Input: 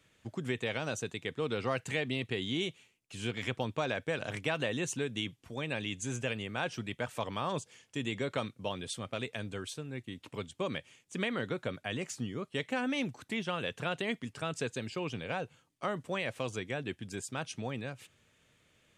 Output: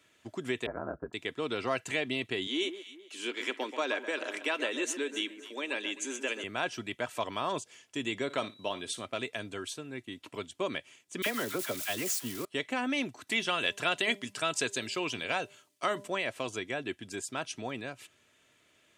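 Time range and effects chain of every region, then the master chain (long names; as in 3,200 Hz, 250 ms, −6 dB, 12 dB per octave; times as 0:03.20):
0:00.66–0:01.13: Butterworth low-pass 1,500 Hz 48 dB per octave + low-shelf EQ 140 Hz +8 dB + ring modulation 43 Hz
0:02.47–0:06.44: Butterworth high-pass 260 Hz + notch filter 690 Hz, Q 5.4 + delay that swaps between a low-pass and a high-pass 130 ms, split 1,900 Hz, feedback 57%, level −10 dB
0:08.29–0:09.05: low-shelf EQ 61 Hz −10 dB + steady tone 3,900 Hz −57 dBFS + flutter between parallel walls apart 9.7 metres, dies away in 0.21 s
0:11.22–0:12.45: spike at every zero crossing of −30.5 dBFS + all-pass dispersion lows, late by 41 ms, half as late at 1,200 Hz
0:13.27–0:16.08: high-shelf EQ 2,000 Hz +8.5 dB + hum removal 199.8 Hz, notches 5
whole clip: high-pass filter 260 Hz 6 dB per octave; comb filter 3 ms, depth 38%; level +2.5 dB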